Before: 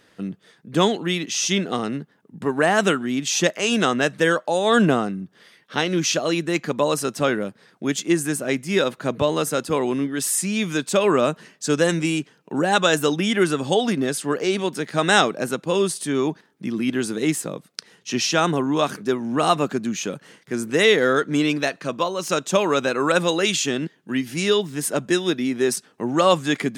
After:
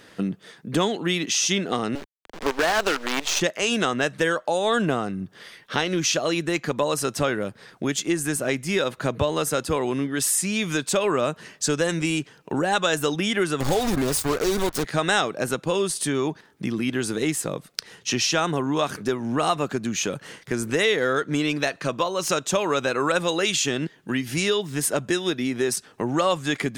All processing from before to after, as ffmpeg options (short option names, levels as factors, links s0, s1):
-filter_complex "[0:a]asettb=1/sr,asplit=3[s0][s1][s2];[s0]atrim=end=1.954[s3];[s1]atrim=start=1.95:end=3.41,asetpts=PTS-STARTPTS,afade=t=in:d=0.004:c=qsin,afade=t=out:st=1.456:d=0.004:c=qsin,acrusher=bits=4:dc=4:mix=0:aa=0.000001,acrossover=split=240 7200:gain=0.126 1 0.224[s4][s5][s6];[s4][s5][s6]amix=inputs=3:normalize=0,asoftclip=type=hard:threshold=0.237[s7];[s2]atrim=start=3.406[s8];[s3][s7]acrossfade=d=0.004:c1=hsin:c2=qsin[s9];[s9][s8]acrossfade=d=0.004:c1=qsin:c2=hsin,asettb=1/sr,asplit=3[s10][s11][s12];[s10]atrim=end=13.604[s13];[s11]atrim=start=13.6:end=14.84,asetpts=PTS-STARTPTS,afade=t=in:d=0.004:c=qsin,afade=t=out:st=1.236:d=0.004:c=qsin,aeval=exprs='val(0)+0.5*0.0447*sgn(val(0))':c=same,asuperstop=centerf=2200:order=8:qfactor=0.97,acrusher=bits=3:mix=0:aa=0.5[s14];[s12]atrim=start=14.836[s15];[s13][s14]acrossfade=d=0.004:c1=hsin:c2=qsin[s16];[s16][s15]acrossfade=d=0.004:c1=qsin:c2=hsin,acompressor=threshold=0.0316:ratio=2.5,asubboost=boost=6.5:cutoff=73,acontrast=87"